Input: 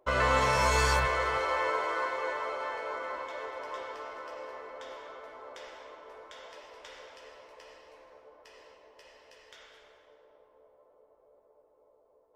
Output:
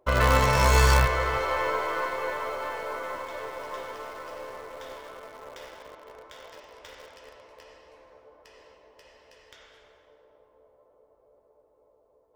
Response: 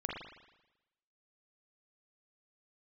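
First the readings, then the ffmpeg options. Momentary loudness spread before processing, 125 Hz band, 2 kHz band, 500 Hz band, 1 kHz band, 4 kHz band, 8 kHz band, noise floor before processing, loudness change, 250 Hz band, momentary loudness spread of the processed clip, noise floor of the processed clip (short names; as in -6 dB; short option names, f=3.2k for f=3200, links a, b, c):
23 LU, +10.5 dB, +3.0 dB, +3.5 dB, +3.0 dB, +4.0 dB, +4.5 dB, -66 dBFS, +4.5 dB, +6.5 dB, 23 LU, -64 dBFS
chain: -filter_complex "[0:a]equalizer=f=72:w=0.36:g=8.5,asplit=2[a][b];[b]acrusher=bits=4:dc=4:mix=0:aa=0.000001,volume=-7dB[c];[a][c]amix=inputs=2:normalize=0"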